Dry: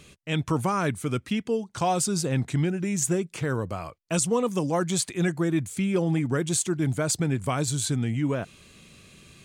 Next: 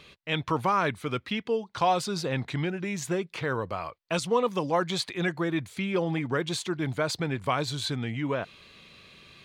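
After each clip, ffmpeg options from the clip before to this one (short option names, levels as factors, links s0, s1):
-af "equalizer=f=500:t=o:w=1:g=5,equalizer=f=1000:t=o:w=1:g=8,equalizer=f=2000:t=o:w=1:g=6,equalizer=f=4000:t=o:w=1:g=11,equalizer=f=8000:t=o:w=1:g=-10,volume=0.473"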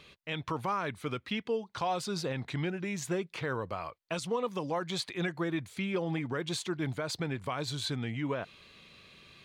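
-af "alimiter=limit=0.112:level=0:latency=1:release=139,volume=0.668"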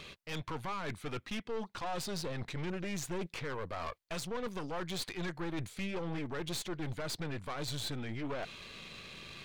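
-af "areverse,acompressor=threshold=0.00891:ratio=5,areverse,aeval=exprs='(tanh(178*val(0)+0.75)-tanh(0.75))/178':c=same,volume=3.55"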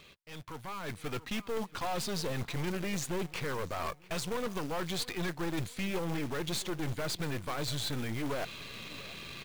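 -filter_complex "[0:a]asplit=2[s0][s1];[s1]adelay=682,lowpass=f=4600:p=1,volume=0.1,asplit=2[s2][s3];[s3]adelay=682,lowpass=f=4600:p=1,volume=0.41,asplit=2[s4][s5];[s5]adelay=682,lowpass=f=4600:p=1,volume=0.41[s6];[s0][s2][s4][s6]amix=inputs=4:normalize=0,dynaudnorm=f=350:g=5:m=3.55,acrusher=bits=3:mode=log:mix=0:aa=0.000001,volume=0.422"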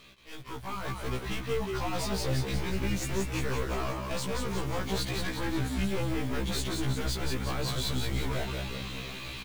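-filter_complex "[0:a]volume=33.5,asoftclip=hard,volume=0.0299,asplit=2[s0][s1];[s1]asplit=8[s2][s3][s4][s5][s6][s7][s8][s9];[s2]adelay=180,afreqshift=-66,volume=0.631[s10];[s3]adelay=360,afreqshift=-132,volume=0.367[s11];[s4]adelay=540,afreqshift=-198,volume=0.211[s12];[s5]adelay=720,afreqshift=-264,volume=0.123[s13];[s6]adelay=900,afreqshift=-330,volume=0.0716[s14];[s7]adelay=1080,afreqshift=-396,volume=0.0412[s15];[s8]adelay=1260,afreqshift=-462,volume=0.024[s16];[s9]adelay=1440,afreqshift=-528,volume=0.014[s17];[s10][s11][s12][s13][s14][s15][s16][s17]amix=inputs=8:normalize=0[s18];[s0][s18]amix=inputs=2:normalize=0,afftfilt=real='re*1.73*eq(mod(b,3),0)':imag='im*1.73*eq(mod(b,3),0)':win_size=2048:overlap=0.75,volume=1.68"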